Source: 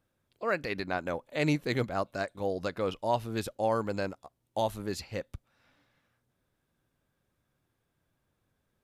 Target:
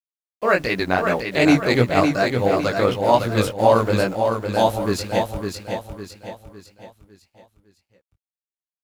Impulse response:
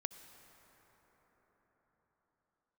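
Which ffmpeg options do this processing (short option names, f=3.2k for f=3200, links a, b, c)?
-filter_complex "[0:a]aeval=exprs='sgn(val(0))*max(abs(val(0))-0.00188,0)':c=same,acontrast=79,agate=range=-33dB:threshold=-43dB:ratio=3:detection=peak,flanger=delay=16:depth=5.7:speed=2.7,acrusher=bits=9:mix=0:aa=0.000001,asplit=2[a][b];[b]aecho=0:1:556|1112|1668|2224|2780:0.531|0.223|0.0936|0.0393|0.0165[c];[a][c]amix=inputs=2:normalize=0,volume=8.5dB"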